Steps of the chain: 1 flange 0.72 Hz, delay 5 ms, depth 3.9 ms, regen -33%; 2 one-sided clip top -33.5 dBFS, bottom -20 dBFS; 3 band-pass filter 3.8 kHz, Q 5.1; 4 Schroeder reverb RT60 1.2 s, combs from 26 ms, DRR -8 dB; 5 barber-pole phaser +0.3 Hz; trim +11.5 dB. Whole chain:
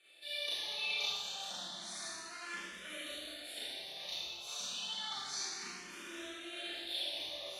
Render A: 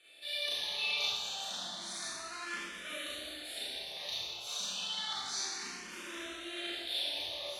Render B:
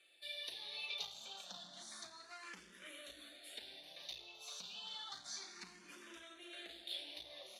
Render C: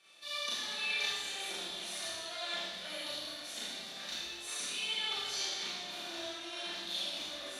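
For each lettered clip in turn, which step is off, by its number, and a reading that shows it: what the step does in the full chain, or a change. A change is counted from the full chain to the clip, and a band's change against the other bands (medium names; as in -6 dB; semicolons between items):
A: 1, loudness change +3.0 LU; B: 4, crest factor change +4.0 dB; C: 5, momentary loudness spread change -2 LU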